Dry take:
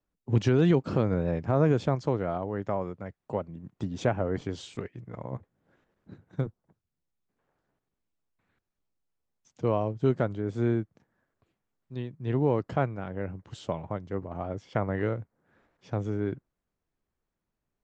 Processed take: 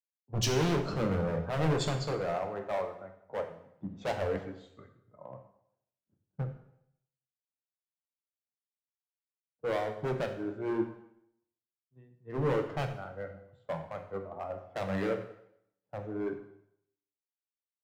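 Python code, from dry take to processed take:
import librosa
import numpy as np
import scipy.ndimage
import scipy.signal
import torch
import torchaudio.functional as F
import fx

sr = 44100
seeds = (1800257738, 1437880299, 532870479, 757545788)

y = scipy.signal.sosfilt(scipy.signal.butter(2, 48.0, 'highpass', fs=sr, output='sos'), x)
y = fx.hum_notches(y, sr, base_hz=60, count=7)
y = fx.noise_reduce_blind(y, sr, reduce_db=11)
y = fx.env_lowpass(y, sr, base_hz=1000.0, full_db=-22.5)
y = fx.bass_treble(y, sr, bass_db=1, treble_db=11)
y = np.clip(y, -10.0 ** (-29.0 / 20.0), 10.0 ** (-29.0 / 20.0))
y = fx.rev_plate(y, sr, seeds[0], rt60_s=1.1, hf_ratio=0.9, predelay_ms=0, drr_db=4.5)
y = fx.band_widen(y, sr, depth_pct=70)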